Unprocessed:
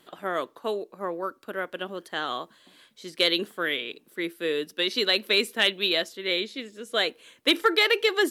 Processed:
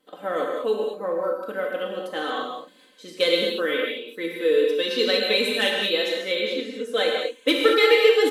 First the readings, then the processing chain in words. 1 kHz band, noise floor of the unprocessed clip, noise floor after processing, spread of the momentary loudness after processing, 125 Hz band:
+2.0 dB, -61 dBFS, -54 dBFS, 12 LU, no reading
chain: gate -55 dBFS, range -9 dB; peaking EQ 440 Hz +10 dB 0.89 oct; comb 3.9 ms, depth 83%; gated-style reverb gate 250 ms flat, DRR -1 dB; trim -5 dB

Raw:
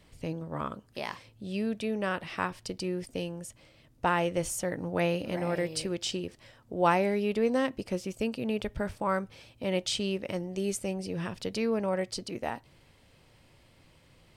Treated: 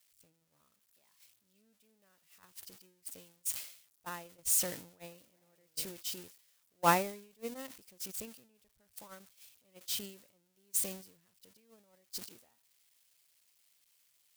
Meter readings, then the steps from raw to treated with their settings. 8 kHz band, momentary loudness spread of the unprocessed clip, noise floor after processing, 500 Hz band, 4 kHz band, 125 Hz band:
+3.0 dB, 11 LU, -75 dBFS, -14.5 dB, -7.5 dB, -14.5 dB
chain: zero-crossing glitches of -19 dBFS; gate -21 dBFS, range -41 dB; decay stretcher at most 100 dB/s

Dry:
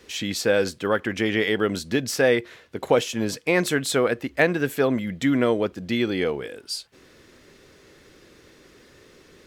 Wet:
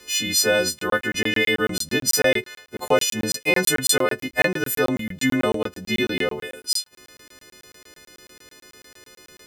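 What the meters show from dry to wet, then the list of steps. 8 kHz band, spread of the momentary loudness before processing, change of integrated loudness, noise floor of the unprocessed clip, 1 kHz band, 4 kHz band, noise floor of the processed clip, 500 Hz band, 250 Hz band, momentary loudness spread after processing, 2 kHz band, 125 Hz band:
+11.0 dB, 8 LU, +2.0 dB, -54 dBFS, +1.5 dB, +6.5 dB, under -85 dBFS, -1.0 dB, -1.5 dB, 7 LU, +4.0 dB, -1.5 dB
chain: partials quantised in pitch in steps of 3 st; crackling interface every 0.11 s, samples 1024, zero, from 0.79 s

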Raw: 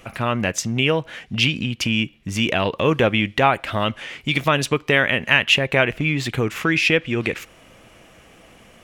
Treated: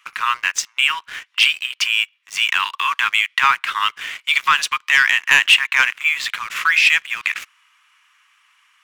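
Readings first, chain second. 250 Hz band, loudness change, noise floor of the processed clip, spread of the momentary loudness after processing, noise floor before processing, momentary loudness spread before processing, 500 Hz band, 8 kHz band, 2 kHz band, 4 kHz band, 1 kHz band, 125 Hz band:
under -25 dB, +3.0 dB, -61 dBFS, 10 LU, -50 dBFS, 8 LU, under -25 dB, +4.5 dB, +5.5 dB, +5.0 dB, +3.5 dB, under -25 dB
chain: steep high-pass 980 Hz 72 dB/octave; treble shelf 6.4 kHz -8 dB; waveshaping leveller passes 2

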